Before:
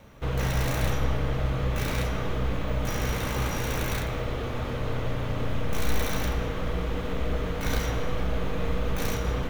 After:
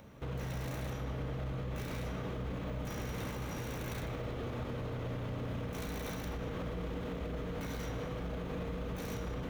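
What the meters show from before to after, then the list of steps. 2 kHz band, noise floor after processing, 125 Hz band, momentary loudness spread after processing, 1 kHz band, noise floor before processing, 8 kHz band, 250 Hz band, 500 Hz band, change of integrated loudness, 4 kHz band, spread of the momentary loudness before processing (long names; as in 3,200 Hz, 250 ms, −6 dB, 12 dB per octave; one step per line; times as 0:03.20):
−12.0 dB, −40 dBFS, −9.5 dB, 1 LU, −11.0 dB, −31 dBFS, −13.0 dB, −7.5 dB, −9.0 dB, −10.0 dB, −12.5 dB, 4 LU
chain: high-pass filter 160 Hz 6 dB per octave
low-shelf EQ 390 Hz +9.5 dB
brickwall limiter −24.5 dBFS, peak gain reduction 11.5 dB
upward compression, threshold −52 dBFS
level −6.5 dB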